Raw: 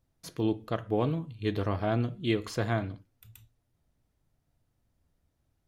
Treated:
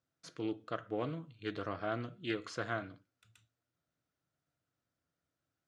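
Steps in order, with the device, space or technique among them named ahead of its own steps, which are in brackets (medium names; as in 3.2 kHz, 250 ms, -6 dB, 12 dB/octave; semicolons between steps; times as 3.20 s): full-range speaker at full volume (loudspeaker Doppler distortion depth 0.14 ms; cabinet simulation 180–8100 Hz, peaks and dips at 220 Hz -7 dB, 400 Hz -4 dB, 880 Hz -6 dB, 1.4 kHz +8 dB); trim -6 dB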